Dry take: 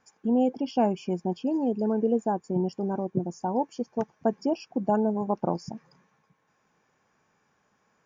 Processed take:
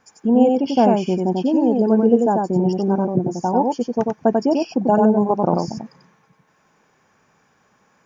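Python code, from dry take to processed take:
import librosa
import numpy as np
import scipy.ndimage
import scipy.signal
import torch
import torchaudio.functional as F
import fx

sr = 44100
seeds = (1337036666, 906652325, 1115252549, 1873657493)

y = x + 10.0 ** (-3.0 / 20.0) * np.pad(x, (int(92 * sr / 1000.0), 0))[:len(x)]
y = F.gain(torch.from_numpy(y), 8.0).numpy()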